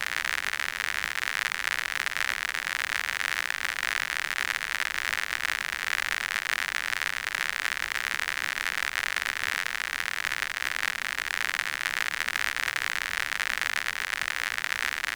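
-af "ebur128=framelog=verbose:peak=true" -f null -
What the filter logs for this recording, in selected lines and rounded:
Integrated loudness:
  I:         -28.0 LUFS
  Threshold: -38.0 LUFS
Loudness range:
  LRA:         0.5 LU
  Threshold: -48.0 LUFS
  LRA low:   -28.3 LUFS
  LRA high:  -27.8 LUFS
True peak:
  Peak:       -7.1 dBFS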